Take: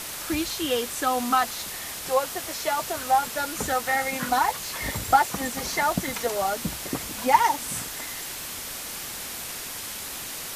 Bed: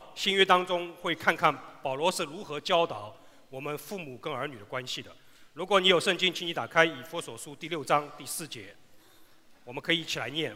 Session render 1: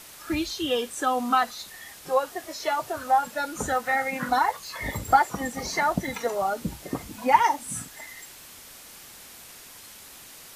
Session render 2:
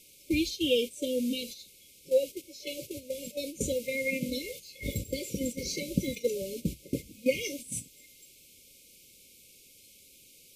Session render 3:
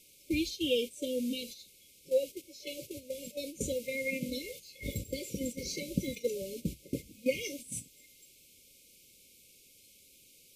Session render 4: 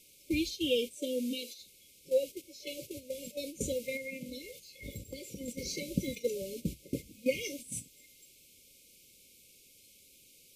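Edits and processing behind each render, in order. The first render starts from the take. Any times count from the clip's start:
noise print and reduce 11 dB
gate -32 dBFS, range -10 dB; FFT band-reject 590–2100 Hz
trim -3.5 dB
0.97–1.57 s: high-pass 130 Hz -> 320 Hz 24 dB/octave; 3.97–5.48 s: compression 1.5:1, threshold -50 dBFS

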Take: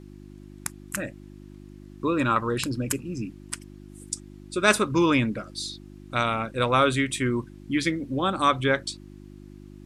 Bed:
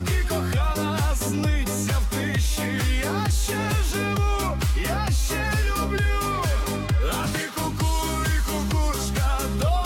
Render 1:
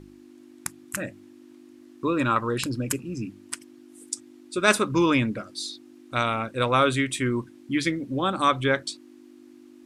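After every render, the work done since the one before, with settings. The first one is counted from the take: de-hum 50 Hz, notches 4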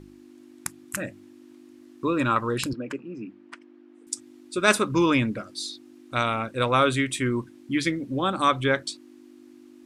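2.73–4.07 s: band-pass 270–2100 Hz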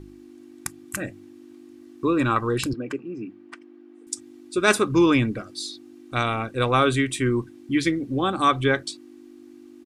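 bass shelf 320 Hz +5 dB; comb 2.6 ms, depth 33%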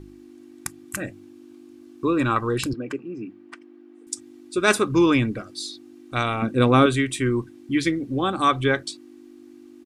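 1.11–2.13 s: band-stop 1.9 kHz; 6.42–6.86 s: peaking EQ 220 Hz +12.5 dB 1.4 oct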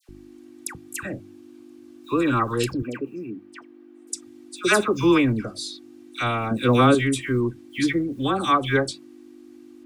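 short-mantissa float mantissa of 6-bit; phase dispersion lows, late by 91 ms, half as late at 1.5 kHz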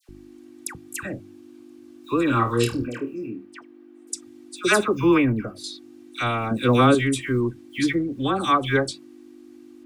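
2.27–3.45 s: flutter echo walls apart 4.4 m, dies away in 0.24 s; 4.95–5.64 s: high-order bell 5.8 kHz -11 dB; 7.95–8.37 s: treble shelf 8.8 kHz -8.5 dB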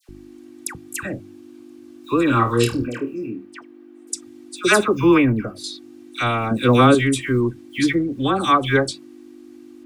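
trim +3.5 dB; peak limiter -1 dBFS, peak gain reduction 0.5 dB

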